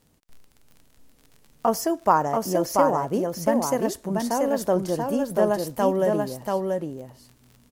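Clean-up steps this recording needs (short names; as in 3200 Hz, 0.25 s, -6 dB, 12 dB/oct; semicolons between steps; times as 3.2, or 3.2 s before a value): de-click; inverse comb 0.685 s -3.5 dB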